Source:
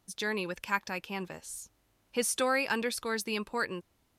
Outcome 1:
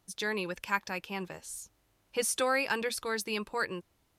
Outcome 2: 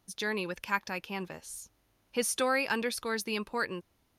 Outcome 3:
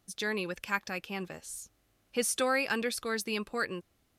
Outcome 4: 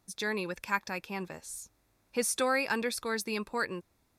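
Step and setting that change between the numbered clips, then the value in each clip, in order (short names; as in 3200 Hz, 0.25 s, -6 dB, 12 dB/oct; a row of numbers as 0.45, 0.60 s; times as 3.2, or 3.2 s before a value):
notch, frequency: 240, 7700, 940, 3000 Hz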